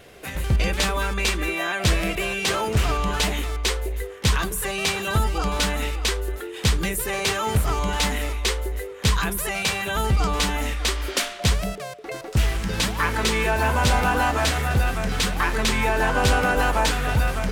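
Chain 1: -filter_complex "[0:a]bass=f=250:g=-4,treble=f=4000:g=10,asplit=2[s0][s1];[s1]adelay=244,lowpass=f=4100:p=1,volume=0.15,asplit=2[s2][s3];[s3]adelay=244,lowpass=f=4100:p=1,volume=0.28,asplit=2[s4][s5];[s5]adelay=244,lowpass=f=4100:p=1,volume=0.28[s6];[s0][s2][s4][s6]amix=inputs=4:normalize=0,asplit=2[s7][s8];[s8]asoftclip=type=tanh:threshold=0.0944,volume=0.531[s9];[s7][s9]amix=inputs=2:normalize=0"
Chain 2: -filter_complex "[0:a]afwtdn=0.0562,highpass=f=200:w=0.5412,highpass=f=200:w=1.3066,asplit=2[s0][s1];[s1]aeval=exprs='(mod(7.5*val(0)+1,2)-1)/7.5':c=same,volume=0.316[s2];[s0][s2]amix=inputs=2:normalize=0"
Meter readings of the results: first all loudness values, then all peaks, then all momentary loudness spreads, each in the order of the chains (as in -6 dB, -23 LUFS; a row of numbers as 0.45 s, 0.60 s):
-18.5 LUFS, -25.5 LUFS; -3.0 dBFS, -9.5 dBFS; 5 LU, 12 LU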